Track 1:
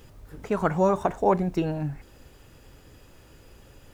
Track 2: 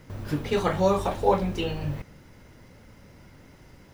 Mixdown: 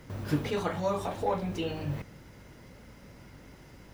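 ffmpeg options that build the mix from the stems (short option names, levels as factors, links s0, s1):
-filter_complex "[0:a]asoftclip=type=tanh:threshold=0.178,aeval=exprs='val(0)+0.00631*(sin(2*PI*50*n/s)+sin(2*PI*2*50*n/s)/2+sin(2*PI*3*50*n/s)/3+sin(2*PI*4*50*n/s)/4+sin(2*PI*5*50*n/s)/5)':c=same,volume=0.237,asplit=2[s0][s1];[1:a]highpass=79,volume=1[s2];[s1]apad=whole_len=173669[s3];[s2][s3]sidechaincompress=threshold=0.0112:ratio=8:attack=6.5:release=333[s4];[s0][s4]amix=inputs=2:normalize=0"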